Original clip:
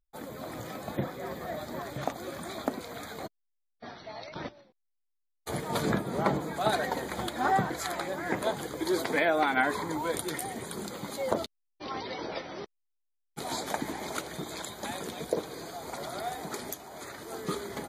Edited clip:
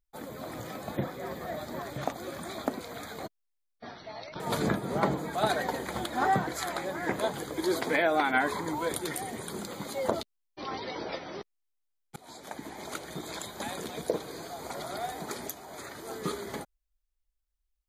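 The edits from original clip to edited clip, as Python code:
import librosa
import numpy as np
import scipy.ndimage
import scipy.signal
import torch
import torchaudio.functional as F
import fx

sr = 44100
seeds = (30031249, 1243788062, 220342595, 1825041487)

y = fx.edit(x, sr, fx.cut(start_s=4.4, length_s=1.23),
    fx.fade_in_from(start_s=13.39, length_s=1.18, floor_db=-22.0), tone=tone)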